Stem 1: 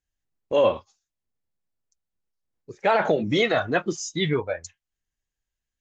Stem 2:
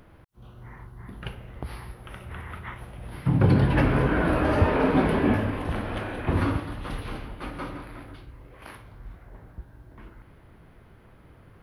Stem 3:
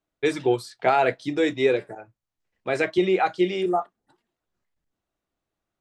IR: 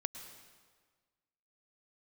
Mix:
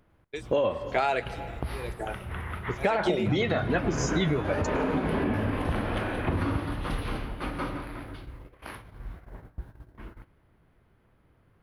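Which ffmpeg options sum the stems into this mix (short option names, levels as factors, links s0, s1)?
-filter_complex "[0:a]bass=f=250:g=5,treble=f=4000:g=-4,volume=1.26,asplit=2[s0][s1];[s1]volume=0.501[s2];[1:a]alimiter=limit=0.15:level=0:latency=1:release=209,volume=0.944,asplit=2[s3][s4];[s4]volume=0.447[s5];[2:a]highshelf=f=3000:g=10,aeval=exprs='val(0)*pow(10,-38*(0.5-0.5*cos(2*PI*1*n/s))/20)':c=same,adelay=100,volume=1.33,asplit=2[s6][s7];[s7]volume=0.335[s8];[3:a]atrim=start_sample=2205[s9];[s2][s5][s8]amix=inputs=3:normalize=0[s10];[s10][s9]afir=irnorm=-1:irlink=0[s11];[s0][s3][s6][s11]amix=inputs=4:normalize=0,agate=range=0.2:threshold=0.00708:ratio=16:detection=peak,acompressor=threshold=0.0708:ratio=6"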